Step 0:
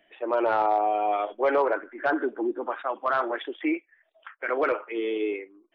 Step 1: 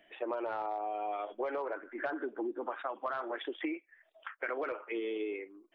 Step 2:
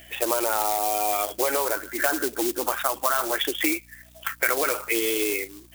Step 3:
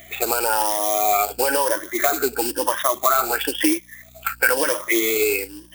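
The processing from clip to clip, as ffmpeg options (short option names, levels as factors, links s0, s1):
-af "acompressor=threshold=0.0224:ratio=10"
-af "aeval=exprs='val(0)+0.000794*(sin(2*PI*60*n/s)+sin(2*PI*2*60*n/s)/2+sin(2*PI*3*60*n/s)/3+sin(2*PI*4*60*n/s)/4+sin(2*PI*5*60*n/s)/5)':c=same,acrusher=bits=4:mode=log:mix=0:aa=0.000001,crystalizer=i=6:c=0,volume=2.66"
-af "afftfilt=real='re*pow(10,14/40*sin(2*PI*(1.2*log(max(b,1)*sr/1024/100)/log(2)-(1)*(pts-256)/sr)))':imag='im*pow(10,14/40*sin(2*PI*(1.2*log(max(b,1)*sr/1024/100)/log(2)-(1)*(pts-256)/sr)))':win_size=1024:overlap=0.75,volume=1.26"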